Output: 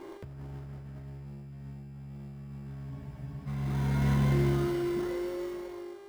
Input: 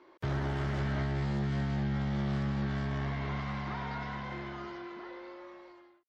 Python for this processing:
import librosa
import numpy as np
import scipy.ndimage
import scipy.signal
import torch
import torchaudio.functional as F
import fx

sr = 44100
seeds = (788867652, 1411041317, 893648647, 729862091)

p1 = fx.dmg_buzz(x, sr, base_hz=400.0, harmonics=29, level_db=-63.0, tilt_db=-6, odd_only=False)
p2 = fx.tilt_eq(p1, sr, slope=-2.5)
p3 = p2 + 10.0 ** (-19.5 / 20.0) * np.pad(p2, (int(470 * sr / 1000.0), 0))[:len(p2)]
p4 = fx.sample_hold(p3, sr, seeds[0], rate_hz=2500.0, jitter_pct=0)
p5 = p3 + (p4 * 10.0 ** (-9.0 / 20.0))
p6 = fx.doubler(p5, sr, ms=37.0, db=-10.0)
p7 = fx.over_compress(p6, sr, threshold_db=-31.0, ratio=-0.5)
p8 = fx.dynamic_eq(p7, sr, hz=910.0, q=0.93, threshold_db=-47.0, ratio=4.0, max_db=-8)
y = fx.spec_freeze(p8, sr, seeds[1], at_s=2.92, hold_s=0.56)